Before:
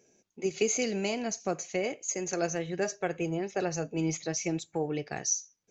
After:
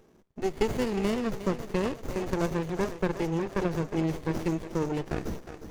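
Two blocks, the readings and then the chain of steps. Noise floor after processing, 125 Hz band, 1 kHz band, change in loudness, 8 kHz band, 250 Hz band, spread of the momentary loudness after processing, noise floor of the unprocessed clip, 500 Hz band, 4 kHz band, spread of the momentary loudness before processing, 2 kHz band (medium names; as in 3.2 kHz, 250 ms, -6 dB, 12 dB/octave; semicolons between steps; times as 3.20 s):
-60 dBFS, +6.0 dB, +2.5 dB, +1.5 dB, no reading, +4.0 dB, 6 LU, -74 dBFS, +1.5 dB, -3.0 dB, 4 LU, -1.0 dB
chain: fade out at the end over 0.65 s; in parallel at +2.5 dB: compression, threshold -39 dBFS, peak gain reduction 15.5 dB; on the sum: thinning echo 360 ms, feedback 60%, high-pass 210 Hz, level -11 dB; sliding maximum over 33 samples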